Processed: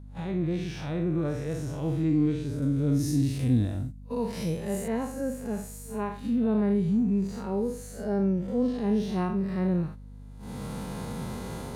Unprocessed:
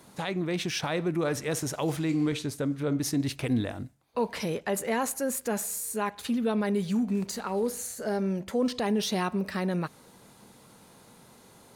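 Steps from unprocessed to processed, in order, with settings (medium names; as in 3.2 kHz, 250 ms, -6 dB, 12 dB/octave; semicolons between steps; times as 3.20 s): spectral blur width 115 ms; recorder AGC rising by 25 dB/s; gate -40 dBFS, range -14 dB; 2.62–4.88 s: tone controls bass +3 dB, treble +14 dB; harmonic-percussive split percussive -15 dB; tilt EQ -2 dB/octave; hum 50 Hz, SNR 16 dB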